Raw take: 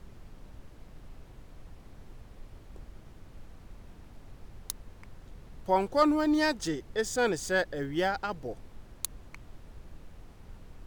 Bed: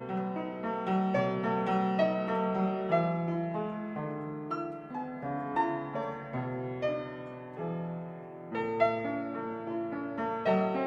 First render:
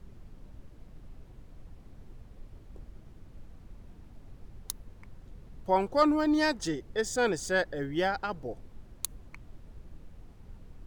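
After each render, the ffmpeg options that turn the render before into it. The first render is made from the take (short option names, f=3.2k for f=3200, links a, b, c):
-af "afftdn=nr=6:nf=-52"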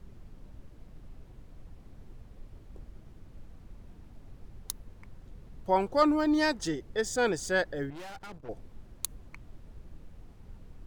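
-filter_complex "[0:a]asettb=1/sr,asplit=3[a][b][c];[a]atrim=end=7.904[d];[b]atrim=start=7.9:end=8.49,asetpts=PTS-STARTPTS,afade=t=in:d=0.004:c=qsin,afade=t=out:st=0.586:d=0.004:c=qsin,aeval=exprs='(tanh(126*val(0)+0.8)-tanh(0.8))/126':c=same[e];[c]atrim=start=8.486[f];[d][e]acrossfade=d=0.004:c1=hsin:c2=qsin[g];[g][f]acrossfade=d=0.004:c1=qsin:c2=hsin"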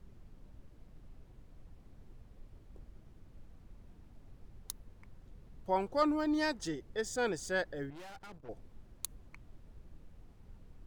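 -af "volume=-6dB"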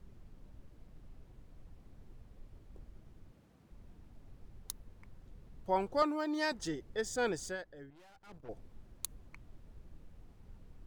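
-filter_complex "[0:a]asettb=1/sr,asplit=3[a][b][c];[a]atrim=end=3.324[d];[b]atrim=start=3.32:end=3.72,asetpts=PTS-STARTPTS,afade=t=in:d=0.004:c=qsin,afade=t=out:st=0.396:d=0.004:c=qsin,highpass=130[e];[c]atrim=start=3.716[f];[d][e]acrossfade=d=0.004:c1=hsin:c2=qsin[g];[g][f]acrossfade=d=0.004:c1=qsin:c2=hsin,asettb=1/sr,asplit=3[h][i][j];[h]atrim=end=6.024[k];[i]atrim=start=6.02:end=6.52,asetpts=PTS-STARTPTS,afade=t=in:d=0.004:c=qsin,afade=t=out:st=0.496:d=0.004:c=qsin,highpass=350[l];[j]atrim=start=6.516[m];[k][l]acrossfade=d=0.004:c1=hsin:c2=qsin[n];[n][m]acrossfade=d=0.004:c1=qsin:c2=hsin,asplit=3[o][p][q];[o]atrim=end=7.57,asetpts=PTS-STARTPTS,afade=t=out:st=7.42:d=0.15:c=qsin:silence=0.281838[r];[p]atrim=start=7.57:end=8.24,asetpts=PTS-STARTPTS,volume=-11dB[s];[q]atrim=start=8.24,asetpts=PTS-STARTPTS,afade=t=in:d=0.15:c=qsin:silence=0.281838[t];[r][s][t]concat=n=3:v=0:a=1"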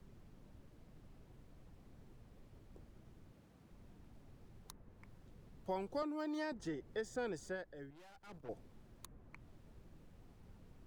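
-filter_complex "[0:a]acrossover=split=90|520|2100[a][b][c][d];[a]acompressor=threshold=-60dB:ratio=4[e];[b]acompressor=threshold=-41dB:ratio=4[f];[c]acompressor=threshold=-45dB:ratio=4[g];[d]acompressor=threshold=-58dB:ratio=4[h];[e][f][g][h]amix=inputs=4:normalize=0"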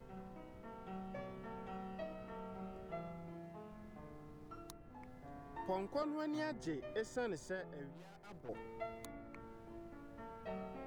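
-filter_complex "[1:a]volume=-19dB[a];[0:a][a]amix=inputs=2:normalize=0"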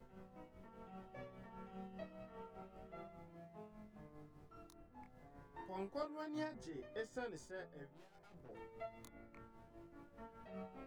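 -af "tremolo=f=5:d=0.6,flanger=delay=19:depth=7:speed=0.27"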